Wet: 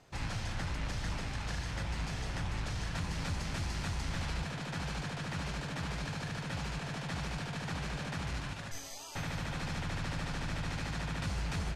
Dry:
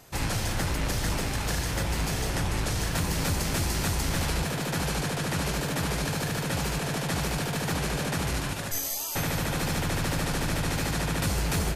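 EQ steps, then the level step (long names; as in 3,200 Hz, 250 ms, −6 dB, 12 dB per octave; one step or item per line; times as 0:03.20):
dynamic equaliser 400 Hz, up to −7 dB, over −46 dBFS, Q 1
high-frequency loss of the air 89 metres
−7.0 dB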